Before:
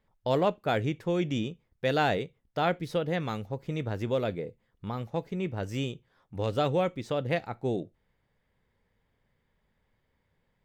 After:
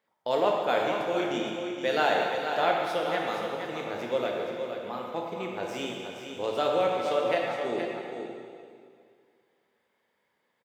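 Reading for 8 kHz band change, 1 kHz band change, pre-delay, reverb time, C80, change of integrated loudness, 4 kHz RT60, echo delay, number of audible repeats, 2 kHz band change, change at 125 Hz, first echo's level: +4.0 dB, +4.5 dB, 5 ms, 2.1 s, 0.5 dB, +1.5 dB, 2.0 s, 471 ms, 1, +4.0 dB, -13.5 dB, -7.5 dB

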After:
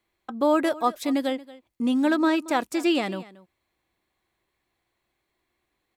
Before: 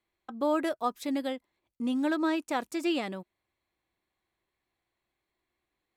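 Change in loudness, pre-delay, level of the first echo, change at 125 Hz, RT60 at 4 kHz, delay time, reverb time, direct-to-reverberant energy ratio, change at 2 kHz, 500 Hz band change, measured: +6.5 dB, no reverb, -19.0 dB, no reading, no reverb, 229 ms, no reverb, no reverb, +6.5 dB, +6.5 dB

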